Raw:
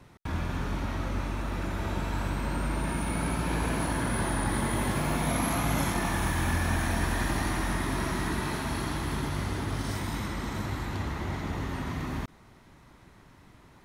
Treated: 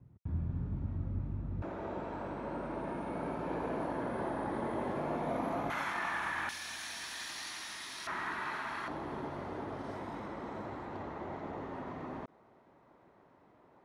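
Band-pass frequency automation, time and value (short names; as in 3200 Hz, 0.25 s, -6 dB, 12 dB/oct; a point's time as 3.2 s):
band-pass, Q 1.3
110 Hz
from 1.62 s 530 Hz
from 5.7 s 1500 Hz
from 6.49 s 4700 Hz
from 8.07 s 1400 Hz
from 8.88 s 580 Hz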